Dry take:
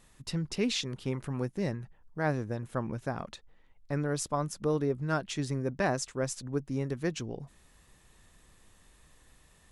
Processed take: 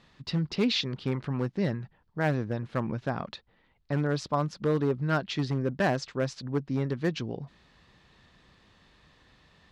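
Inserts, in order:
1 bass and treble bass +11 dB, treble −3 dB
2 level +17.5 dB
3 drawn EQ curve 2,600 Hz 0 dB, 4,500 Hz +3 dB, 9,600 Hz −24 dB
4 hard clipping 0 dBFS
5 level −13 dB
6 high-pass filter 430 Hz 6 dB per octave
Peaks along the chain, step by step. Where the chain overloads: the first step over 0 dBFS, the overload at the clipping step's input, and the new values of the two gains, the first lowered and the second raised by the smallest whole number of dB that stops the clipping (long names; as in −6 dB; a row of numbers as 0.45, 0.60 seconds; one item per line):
−12.5, +5.0, +5.0, 0.0, −13.0, −14.0 dBFS
step 2, 5.0 dB
step 2 +12.5 dB, step 5 −8 dB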